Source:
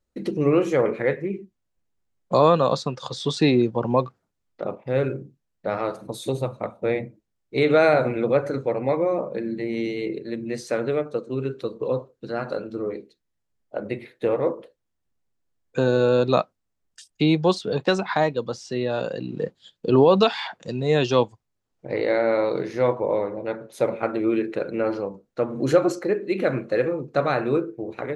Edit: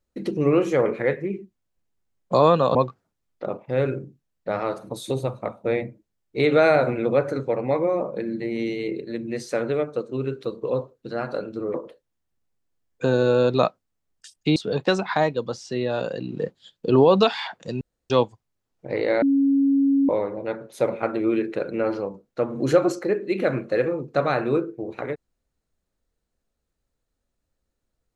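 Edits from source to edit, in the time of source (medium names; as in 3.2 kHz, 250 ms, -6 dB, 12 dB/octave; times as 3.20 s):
2.75–3.93 s: delete
12.92–14.48 s: delete
17.30–17.56 s: delete
20.81–21.10 s: room tone
22.22–23.09 s: bleep 276 Hz -15.5 dBFS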